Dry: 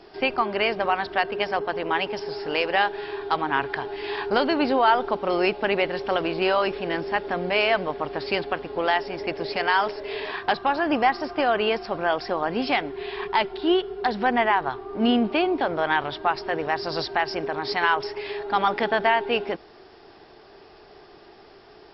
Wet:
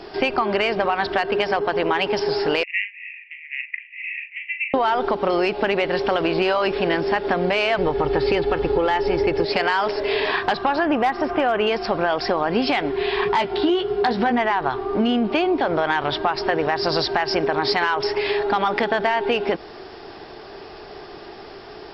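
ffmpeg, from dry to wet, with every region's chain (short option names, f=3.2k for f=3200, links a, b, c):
-filter_complex "[0:a]asettb=1/sr,asplit=3[a][b][c];[a]atrim=end=2.634[d];[b]atrim=start=2.63:end=4.74,asetpts=PTS-STARTPTS,afade=t=in:d=0.004:c=qsin,afade=t=out:st=2.106:d=0.004:c=qsin,asuperpass=centerf=2300:order=12:qfactor=2.9,asplit=2[e][f];[f]adelay=40,volume=-8dB[g];[e][g]amix=inputs=2:normalize=0,atrim=end_sample=93051[h];[c]atrim=start=4.736[i];[d][h]acrossfade=d=0.004:c1=hsin:c2=qsin[j];[j][i]acrossfade=d=0.004:c1=qsin:c2=hsin,asettb=1/sr,asplit=3[k][l][m];[k]atrim=end=7.784[n];[l]atrim=start=7.78:end=9.45,asetpts=PTS-STARTPTS,afade=t=in:d=0.004:c=qsin,afade=t=out:st=1.666:d=0.004:c=qsin,acrossover=split=4000[o][p];[p]acompressor=threshold=-47dB:ratio=4:attack=1:release=60[q];[o][q]amix=inputs=2:normalize=0,lowshelf=f=260:g=10.5,aecho=1:1:2.3:0.55,atrim=end_sample=73647[r];[m]atrim=start=9.446[s];[n][r]acrossfade=d=0.004:c1=hsin:c2=qsin[t];[t][s]acrossfade=d=0.004:c1=qsin:c2=hsin,asettb=1/sr,asplit=3[u][v][w];[u]atrim=end=10.854[x];[v]atrim=start=10.85:end=11.67,asetpts=PTS-STARTPTS,afade=t=in:d=0.004:c=qsin,afade=t=out:st=0.816:d=0.004:c=qsin,equalizer=f=4.7k:t=o:w=0.61:g=-14,acompressor=mode=upward:threshold=-29dB:ratio=2.5:attack=3.2:release=140:knee=2.83:detection=peak,volume=13dB,asoftclip=hard,volume=-13dB[y];[w]atrim=start=11.666[z];[x][y]acrossfade=d=0.004:c1=hsin:c2=qsin[aa];[aa][z]acrossfade=d=0.004:c1=qsin:c2=hsin,asettb=1/sr,asplit=3[ab][ac][ad];[ab]atrim=end=13.254[ae];[ac]atrim=start=13.25:end=14.39,asetpts=PTS-STARTPTS,afade=t=in:d=0.004:c=qsin,afade=t=out:st=1.136:d=0.004:c=qsin,highpass=91,lowshelf=f=150:g=8.5,asplit=2[af][ag];[ag]adelay=17,volume=-6dB[ah];[af][ah]amix=inputs=2:normalize=0,atrim=end_sample=50274[ai];[ad]atrim=start=14.386[aj];[ae][ai]acrossfade=d=0.004:c1=hsin:c2=qsin[ak];[ak][aj]acrossfade=d=0.004:c1=qsin:c2=hsin,acontrast=79,alimiter=limit=-9.5dB:level=0:latency=1:release=107,acompressor=threshold=-20dB:ratio=6,volume=3.5dB"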